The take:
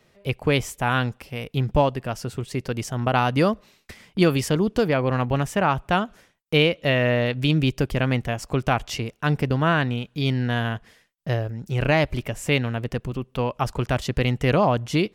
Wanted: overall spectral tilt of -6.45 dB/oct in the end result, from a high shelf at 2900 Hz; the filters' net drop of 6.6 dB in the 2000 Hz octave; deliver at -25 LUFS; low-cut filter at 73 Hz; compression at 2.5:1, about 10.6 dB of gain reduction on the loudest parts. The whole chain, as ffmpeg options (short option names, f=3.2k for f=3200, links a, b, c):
-af "highpass=73,equalizer=f=2k:t=o:g=-6.5,highshelf=f=2.9k:g=-6,acompressor=threshold=-31dB:ratio=2.5,volume=8dB"